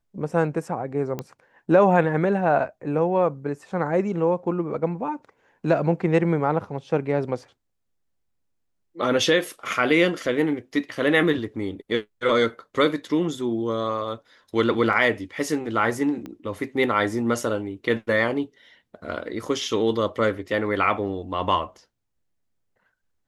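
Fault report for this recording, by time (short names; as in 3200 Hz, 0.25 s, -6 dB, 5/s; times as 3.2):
1.19 pop -16 dBFS
14.93 gap 2.1 ms
16.26 pop -23 dBFS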